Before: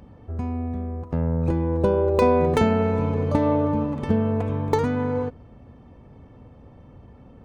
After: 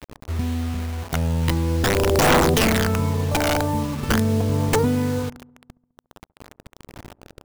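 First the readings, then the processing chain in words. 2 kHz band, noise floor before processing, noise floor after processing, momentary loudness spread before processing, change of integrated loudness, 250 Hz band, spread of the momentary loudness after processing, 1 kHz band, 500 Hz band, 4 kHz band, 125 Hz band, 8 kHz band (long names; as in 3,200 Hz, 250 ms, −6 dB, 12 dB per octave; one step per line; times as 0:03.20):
+11.0 dB, −48 dBFS, −74 dBFS, 11 LU, +2.0 dB, +0.5 dB, 11 LU, +2.5 dB, −1.0 dB, +16.0 dB, +3.0 dB, can't be measured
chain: wrap-around overflow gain 13 dB
phase shifter 0.43 Hz, delay 1.4 ms, feedback 45%
bit reduction 6 bits
on a send: delay with a low-pass on its return 69 ms, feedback 64%, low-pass 800 Hz, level −21.5 dB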